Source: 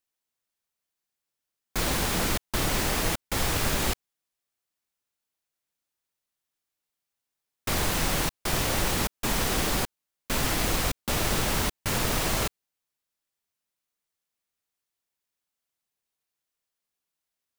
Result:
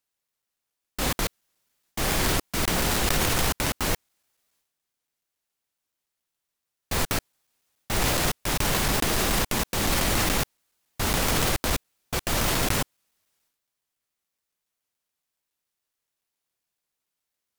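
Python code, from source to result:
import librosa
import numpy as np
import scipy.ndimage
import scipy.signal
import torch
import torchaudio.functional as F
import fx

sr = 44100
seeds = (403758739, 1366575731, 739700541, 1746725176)

y = fx.block_reorder(x, sr, ms=141.0, group=7)
y = fx.transient(y, sr, attack_db=-2, sustain_db=10)
y = fx.vibrato_shape(y, sr, shape='saw_up', rate_hz=6.0, depth_cents=250.0)
y = F.gain(torch.from_numpy(y), 2.0).numpy()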